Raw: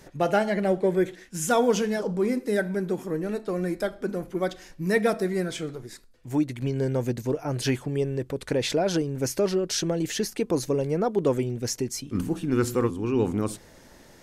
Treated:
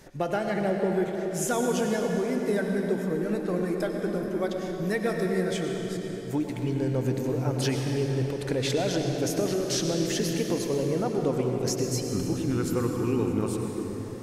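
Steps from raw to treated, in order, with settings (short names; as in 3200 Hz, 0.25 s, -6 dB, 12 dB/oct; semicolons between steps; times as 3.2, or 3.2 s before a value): compressor, threshold -23 dBFS, peak gain reduction 7 dB; reverb RT60 4.5 s, pre-delay 89 ms, DRR 2 dB; gain -1 dB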